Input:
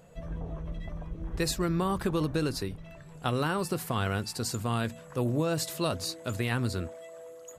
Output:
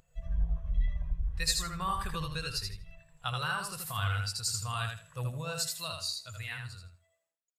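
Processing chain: fade out at the end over 2.24 s; amplifier tone stack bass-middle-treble 10-0-10; in parallel at -1 dB: gain riding within 3 dB 0.5 s; on the sum: bit crusher 11-bit; on a send: feedback delay 80 ms, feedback 33%, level -3 dB; on the sum: spectral contrast expander 1.5:1

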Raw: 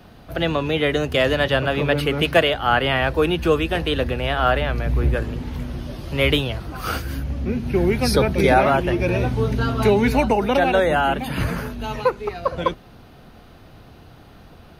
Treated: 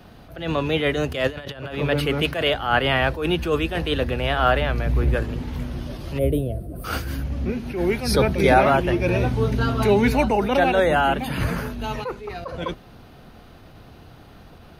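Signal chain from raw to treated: 1.27–1.75 s: compressor with a negative ratio -27 dBFS, ratio -0.5; 6.18–6.84 s: time-frequency box 720–8200 Hz -23 dB; 7.50–8.03 s: peaking EQ 100 Hz -8.5 dB 2 oct; attacks held to a fixed rise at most 100 dB/s

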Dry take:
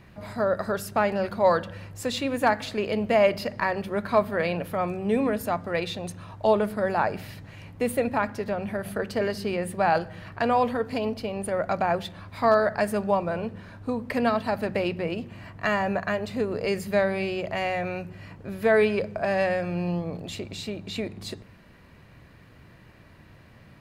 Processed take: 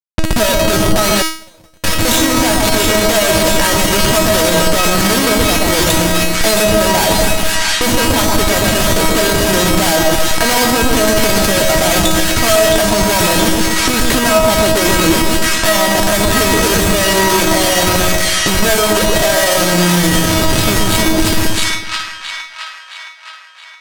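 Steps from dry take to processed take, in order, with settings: tracing distortion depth 0.17 ms; Schmitt trigger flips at -31.5 dBFS; two-band feedback delay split 1.2 kHz, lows 125 ms, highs 669 ms, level -4 dB; level-controlled noise filter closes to 2.8 kHz, open at -27.5 dBFS; 1.22–1.84 s: gate -20 dBFS, range -51 dB; treble shelf 2.8 kHz +8.5 dB; feedback comb 320 Hz, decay 0.44 s, harmonics all, mix 90%; loudness maximiser +35 dB; trim -1 dB

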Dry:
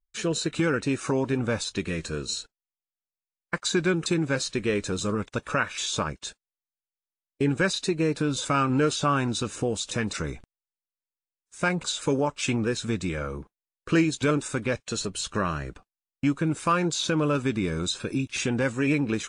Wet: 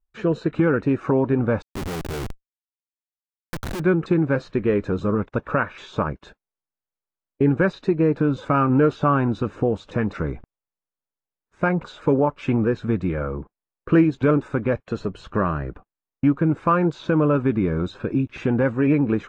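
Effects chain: low-pass 1.3 kHz 12 dB/octave; 1.62–3.80 s: Schmitt trigger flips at -39.5 dBFS; trim +6 dB

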